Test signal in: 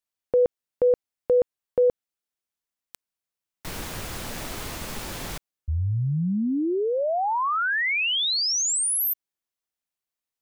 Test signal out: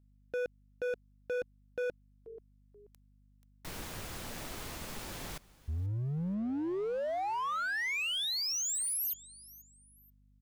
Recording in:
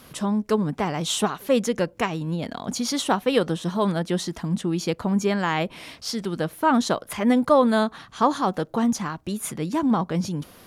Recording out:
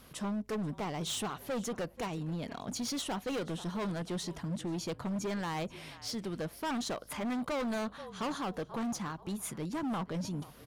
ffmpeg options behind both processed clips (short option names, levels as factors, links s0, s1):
-filter_complex "[0:a]asplit=3[s0][s1][s2];[s1]adelay=483,afreqshift=-41,volume=0.0841[s3];[s2]adelay=966,afreqshift=-82,volume=0.0279[s4];[s0][s3][s4]amix=inputs=3:normalize=0,aeval=exprs='val(0)+0.00178*(sin(2*PI*50*n/s)+sin(2*PI*2*50*n/s)/2+sin(2*PI*3*50*n/s)/3+sin(2*PI*4*50*n/s)/4+sin(2*PI*5*50*n/s)/5)':c=same,volume=15,asoftclip=hard,volume=0.0668,volume=0.376"